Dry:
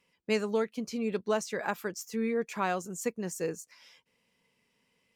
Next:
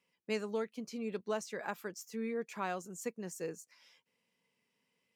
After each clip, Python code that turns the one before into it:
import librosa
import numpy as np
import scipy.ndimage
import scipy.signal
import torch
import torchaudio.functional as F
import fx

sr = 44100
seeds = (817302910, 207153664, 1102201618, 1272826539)

y = scipy.signal.sosfilt(scipy.signal.butter(2, 120.0, 'highpass', fs=sr, output='sos'), x)
y = y * 10.0 ** (-7.0 / 20.0)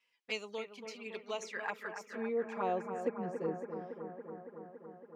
y = fx.env_flanger(x, sr, rest_ms=8.4, full_db=-33.5)
y = fx.filter_sweep_bandpass(y, sr, from_hz=2600.0, to_hz=310.0, start_s=1.24, end_s=3.32, q=0.71)
y = fx.echo_bbd(y, sr, ms=280, stages=4096, feedback_pct=77, wet_db=-8)
y = y * 10.0 ** (7.5 / 20.0)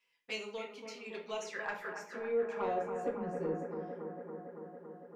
y = 10.0 ** (-25.5 / 20.0) * np.tanh(x / 10.0 ** (-25.5 / 20.0))
y = fx.room_shoebox(y, sr, seeds[0], volume_m3=45.0, walls='mixed', distance_m=0.52)
y = y * 10.0 ** (-1.5 / 20.0)